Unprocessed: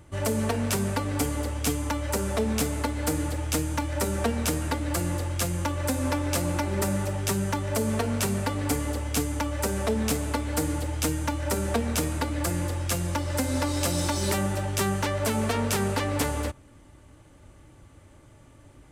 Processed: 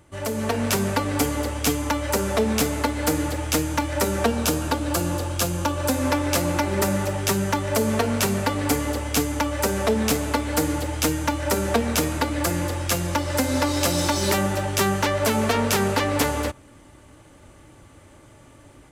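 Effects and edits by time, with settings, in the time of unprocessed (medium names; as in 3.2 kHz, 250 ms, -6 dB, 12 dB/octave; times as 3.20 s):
4.26–5.91 s: peaking EQ 2 kHz -9 dB 0.31 oct
whole clip: dynamic bell 8.8 kHz, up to -6 dB, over -49 dBFS, Q 3.1; level rider gain up to 6.5 dB; bass shelf 150 Hz -7.5 dB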